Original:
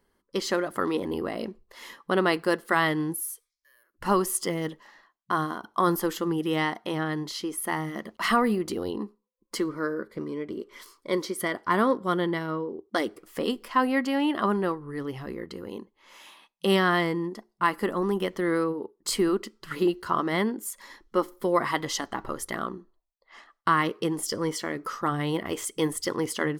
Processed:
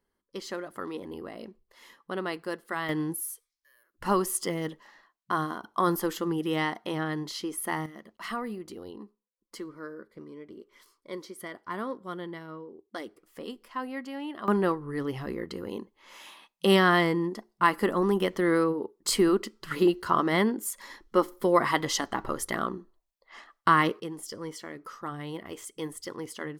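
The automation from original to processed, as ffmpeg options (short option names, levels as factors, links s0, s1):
-af "asetnsamples=n=441:p=0,asendcmd='2.89 volume volume -2dB;7.86 volume volume -11.5dB;14.48 volume volume 1.5dB;24 volume volume -9.5dB',volume=0.335"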